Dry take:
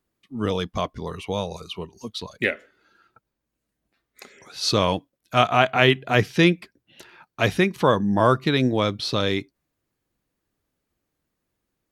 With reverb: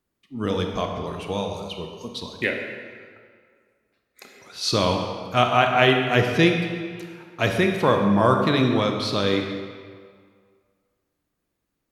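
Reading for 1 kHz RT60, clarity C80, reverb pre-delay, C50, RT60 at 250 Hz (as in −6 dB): 2.0 s, 5.5 dB, 20 ms, 4.0 dB, 1.8 s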